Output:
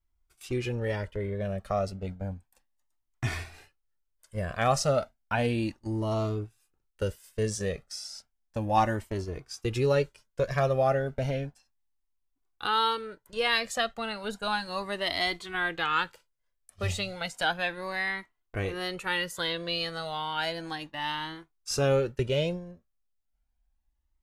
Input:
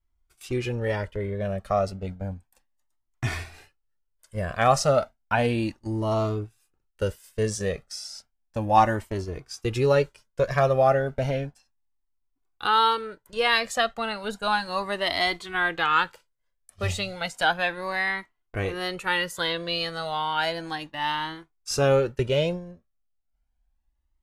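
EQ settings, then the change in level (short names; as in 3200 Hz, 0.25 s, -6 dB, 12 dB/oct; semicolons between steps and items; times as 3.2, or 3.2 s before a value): dynamic EQ 980 Hz, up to -4 dB, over -33 dBFS, Q 0.76; -2.5 dB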